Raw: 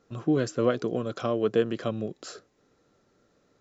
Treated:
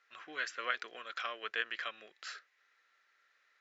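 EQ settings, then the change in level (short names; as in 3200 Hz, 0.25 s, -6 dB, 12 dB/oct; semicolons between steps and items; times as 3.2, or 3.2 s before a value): ladder band-pass 2200 Hz, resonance 50%; +13.0 dB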